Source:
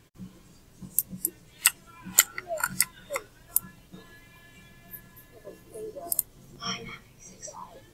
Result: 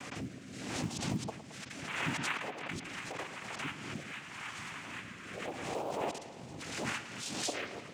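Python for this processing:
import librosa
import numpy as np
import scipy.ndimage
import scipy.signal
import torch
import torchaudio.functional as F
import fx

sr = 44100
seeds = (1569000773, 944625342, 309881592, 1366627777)

p1 = scipy.signal.sosfilt(scipy.signal.butter(2, 160.0, 'highpass', fs=sr, output='sos'), x)
p2 = fx.peak_eq(p1, sr, hz=1600.0, db=9.0, octaves=0.64)
p3 = fx.over_compress(p2, sr, threshold_db=-39.0, ratio=-0.5)
p4 = fx.noise_vocoder(p3, sr, seeds[0], bands=4)
p5 = fx.quant_float(p4, sr, bits=4)
p6 = fx.rotary(p5, sr, hz=0.8)
p7 = p6 + fx.echo_bbd(p6, sr, ms=110, stages=4096, feedback_pct=68, wet_db=-13.0, dry=0)
y = fx.pre_swell(p7, sr, db_per_s=41.0)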